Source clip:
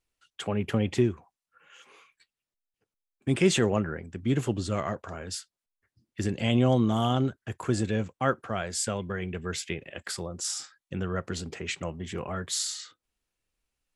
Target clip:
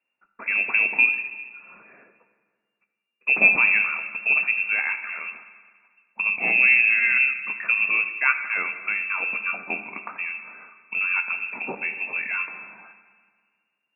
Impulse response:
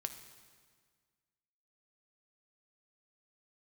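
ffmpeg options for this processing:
-filter_complex "[0:a]lowpass=f=2.4k:t=q:w=0.5098,lowpass=f=2.4k:t=q:w=0.6013,lowpass=f=2.4k:t=q:w=0.9,lowpass=f=2.4k:t=q:w=2.563,afreqshift=-2800,lowshelf=f=140:t=q:w=3:g=-12.5[a];[1:a]atrim=start_sample=2205[b];[a][b]afir=irnorm=-1:irlink=0,volume=6.5dB"

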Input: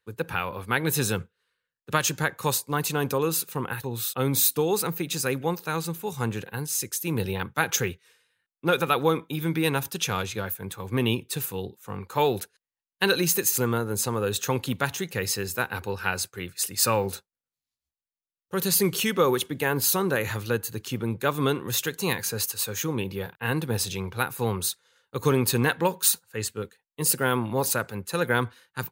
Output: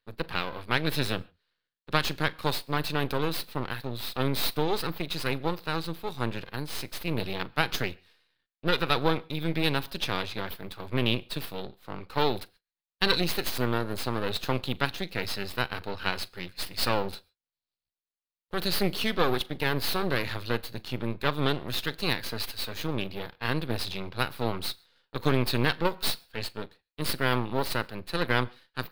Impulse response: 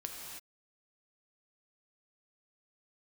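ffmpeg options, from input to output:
-filter_complex "[0:a]aeval=exprs='max(val(0),0)':c=same,highshelf=f=5.4k:t=q:w=3:g=-7,asplit=2[a][b];[1:a]atrim=start_sample=2205,afade=t=out:st=0.16:d=0.01,atrim=end_sample=7497,adelay=40[c];[b][c]afir=irnorm=-1:irlink=0,volume=-18dB[d];[a][d]amix=inputs=2:normalize=0"

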